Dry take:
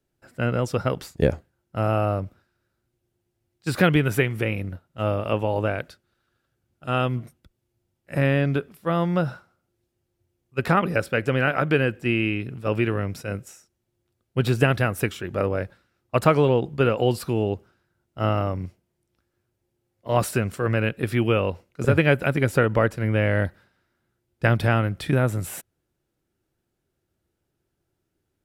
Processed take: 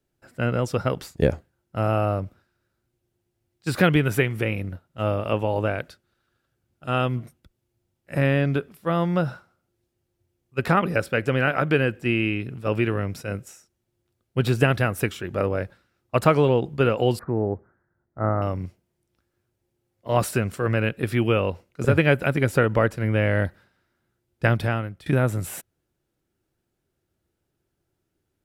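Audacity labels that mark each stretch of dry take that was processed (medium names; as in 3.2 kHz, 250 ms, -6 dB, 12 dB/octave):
17.190000	18.420000	elliptic low-pass 1.9 kHz
24.450000	25.060000	fade out, to -17.5 dB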